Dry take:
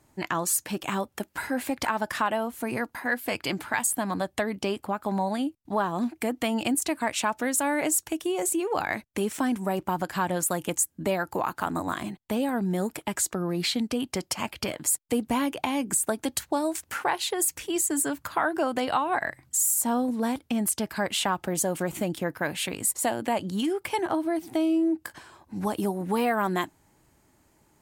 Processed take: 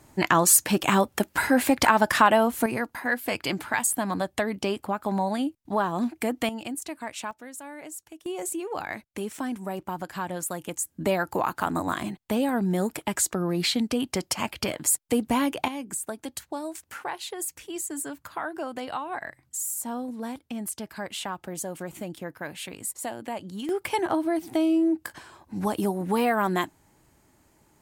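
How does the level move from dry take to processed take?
+8 dB
from 0:02.66 +1 dB
from 0:06.49 −8 dB
from 0:07.31 −15 dB
from 0:08.26 −5 dB
from 0:10.85 +2 dB
from 0:15.68 −7 dB
from 0:23.69 +1.5 dB

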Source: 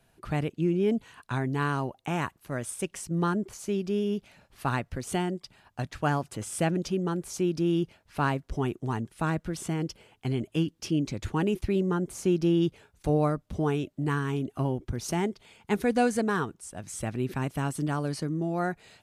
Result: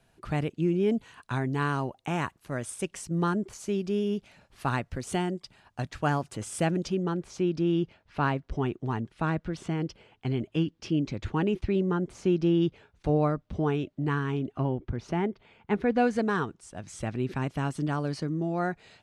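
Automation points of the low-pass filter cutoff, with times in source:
0:06.73 9,700 Hz
0:07.20 4,200 Hz
0:14.22 4,200 Hz
0:15.12 2,400 Hz
0:15.89 2,400 Hz
0:16.30 6,000 Hz

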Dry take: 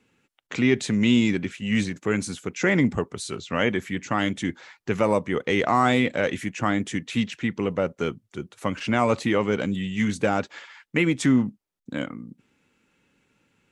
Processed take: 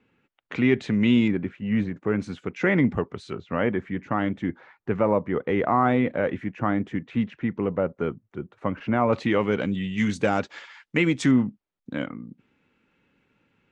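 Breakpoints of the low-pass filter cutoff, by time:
2,700 Hz
from 0:01.28 1,400 Hz
from 0:02.20 2,500 Hz
from 0:03.33 1,500 Hz
from 0:09.13 3,600 Hz
from 0:09.98 6,700 Hz
from 0:11.31 3,200 Hz

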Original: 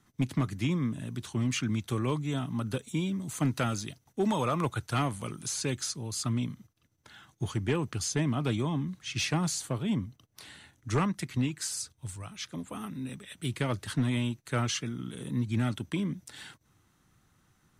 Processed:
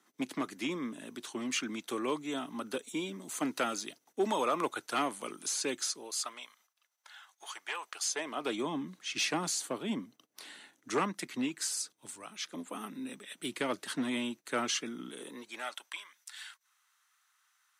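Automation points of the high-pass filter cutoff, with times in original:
high-pass filter 24 dB per octave
0:05.88 280 Hz
0:06.50 750 Hz
0:07.82 750 Hz
0:08.67 250 Hz
0:15.05 250 Hz
0:16.12 1,100 Hz

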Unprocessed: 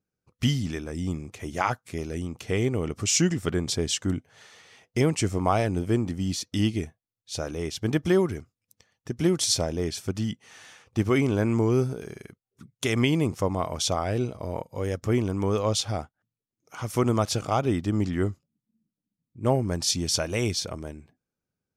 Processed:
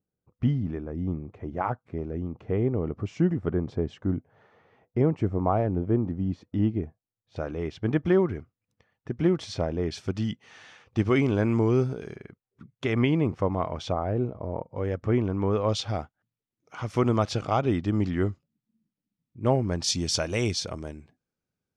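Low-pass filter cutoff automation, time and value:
1,000 Hz
from 0:07.36 2,100 Hz
from 0:09.91 4,200 Hz
from 0:12.16 2,200 Hz
from 0:13.92 1,100 Hz
from 0:14.76 2,100 Hz
from 0:15.69 4,000 Hz
from 0:19.84 6,900 Hz

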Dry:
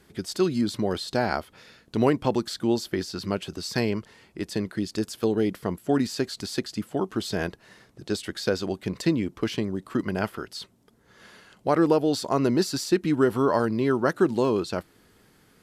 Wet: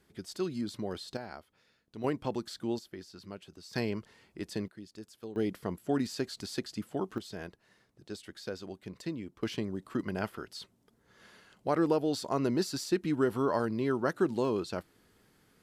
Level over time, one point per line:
−10.5 dB
from 0:01.17 −18.5 dB
from 0:02.04 −10 dB
from 0:02.79 −17 dB
from 0:03.73 −7.5 dB
from 0:04.68 −19 dB
from 0:05.36 −7 dB
from 0:07.18 −14 dB
from 0:09.43 −7 dB

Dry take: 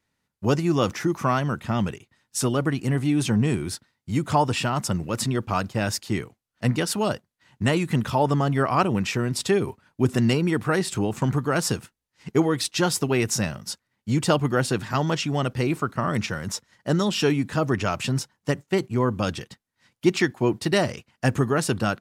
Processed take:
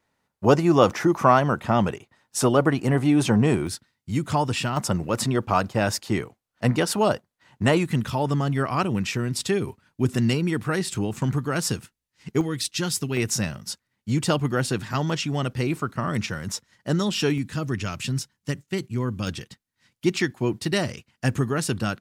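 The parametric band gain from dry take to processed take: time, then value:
parametric band 720 Hz 2.1 octaves
+8.5 dB
from 0:03.67 −3.5 dB
from 0:04.77 +5 dB
from 0:07.86 −5 dB
from 0:12.41 −12 dB
from 0:13.17 −3.5 dB
from 0:17.38 −11.5 dB
from 0:19.27 −5.5 dB

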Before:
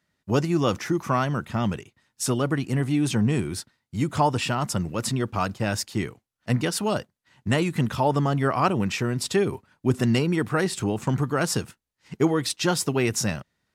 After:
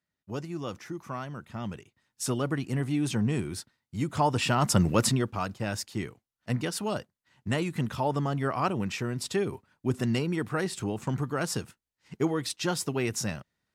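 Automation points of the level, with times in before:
0:01.37 −13 dB
0:02.26 −5 dB
0:04.15 −5 dB
0:04.93 +6 dB
0:05.37 −6 dB

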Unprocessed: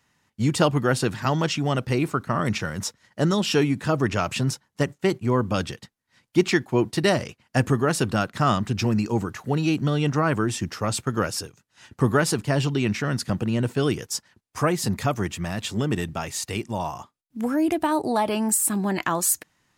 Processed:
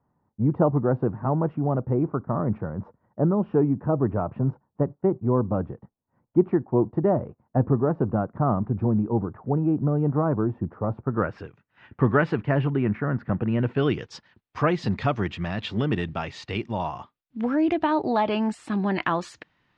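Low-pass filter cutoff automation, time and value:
low-pass filter 24 dB per octave
0:11.02 1,000 Hz
0:11.43 2,500 Hz
0:12.39 2,500 Hz
0:13.07 1,500 Hz
0:14.06 3,800 Hz

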